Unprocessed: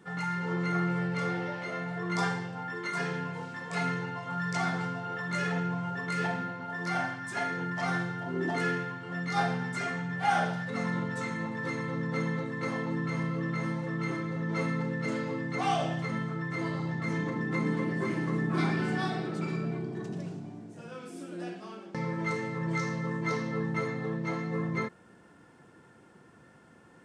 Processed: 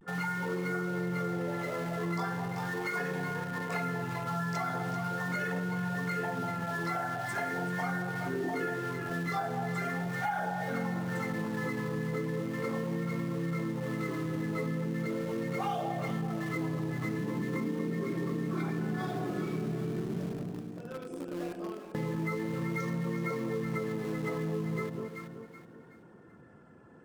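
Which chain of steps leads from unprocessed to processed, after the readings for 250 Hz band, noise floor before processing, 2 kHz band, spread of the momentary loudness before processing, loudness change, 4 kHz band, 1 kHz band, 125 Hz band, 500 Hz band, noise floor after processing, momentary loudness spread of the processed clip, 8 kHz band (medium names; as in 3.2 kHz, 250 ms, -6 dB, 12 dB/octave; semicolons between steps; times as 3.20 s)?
-1.0 dB, -57 dBFS, -2.5 dB, 7 LU, -2.0 dB, -5.0 dB, -2.5 dB, -1.5 dB, +0.5 dB, -52 dBFS, 3 LU, -2.0 dB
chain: resonances exaggerated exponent 1.5; in parallel at -9.5 dB: bit crusher 6-bit; on the sum: echo whose repeats swap between lows and highs 192 ms, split 1 kHz, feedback 60%, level -6 dB; vibrato 0.4 Hz 43 cents; compression, threshold -30 dBFS, peak gain reduction 11 dB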